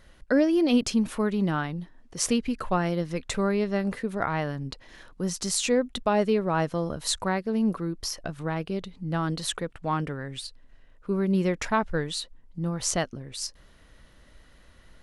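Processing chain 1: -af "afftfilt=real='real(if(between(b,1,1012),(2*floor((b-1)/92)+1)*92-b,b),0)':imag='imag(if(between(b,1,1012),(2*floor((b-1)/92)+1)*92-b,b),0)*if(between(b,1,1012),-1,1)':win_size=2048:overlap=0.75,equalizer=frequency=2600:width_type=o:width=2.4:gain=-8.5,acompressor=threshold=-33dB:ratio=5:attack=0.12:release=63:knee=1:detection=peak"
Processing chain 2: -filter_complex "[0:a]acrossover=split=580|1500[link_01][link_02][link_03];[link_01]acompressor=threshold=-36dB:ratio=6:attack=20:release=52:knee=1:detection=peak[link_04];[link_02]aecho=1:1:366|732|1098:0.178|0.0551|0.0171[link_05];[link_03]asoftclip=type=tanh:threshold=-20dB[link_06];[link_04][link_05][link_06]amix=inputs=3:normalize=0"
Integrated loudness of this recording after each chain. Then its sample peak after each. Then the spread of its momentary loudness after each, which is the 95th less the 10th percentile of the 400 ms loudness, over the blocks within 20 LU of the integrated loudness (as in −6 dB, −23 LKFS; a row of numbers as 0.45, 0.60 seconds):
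−38.5, −32.0 LKFS; −28.0, −10.5 dBFS; 15, 9 LU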